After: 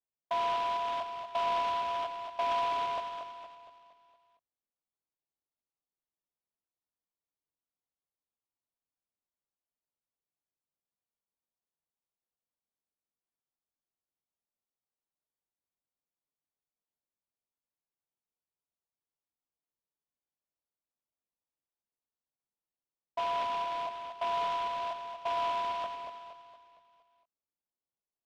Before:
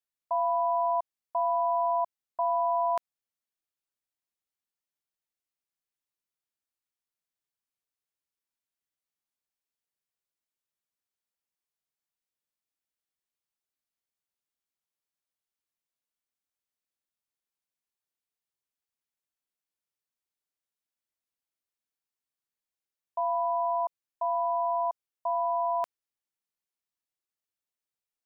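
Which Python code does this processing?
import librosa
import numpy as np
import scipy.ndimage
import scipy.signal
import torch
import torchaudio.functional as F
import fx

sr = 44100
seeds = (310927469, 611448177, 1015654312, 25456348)

y = scipy.signal.sosfilt(scipy.signal.butter(4, 1100.0, 'lowpass', fs=sr, output='sos'), x)
y = fx.doubler(y, sr, ms=21.0, db=-7)
y = fx.echo_feedback(y, sr, ms=232, feedback_pct=47, wet_db=-6.5)
y = fx.noise_mod_delay(y, sr, seeds[0], noise_hz=1800.0, depth_ms=0.046)
y = F.gain(torch.from_numpy(y), -2.0).numpy()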